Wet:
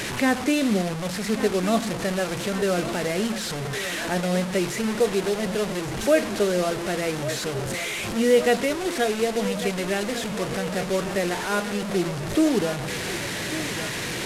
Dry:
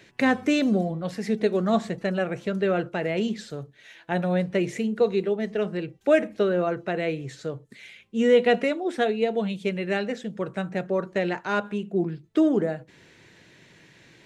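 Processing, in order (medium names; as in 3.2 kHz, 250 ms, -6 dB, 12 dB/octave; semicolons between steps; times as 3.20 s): one-bit delta coder 64 kbps, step -24 dBFS; on a send: thinning echo 1148 ms, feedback 68%, high-pass 200 Hz, level -12 dB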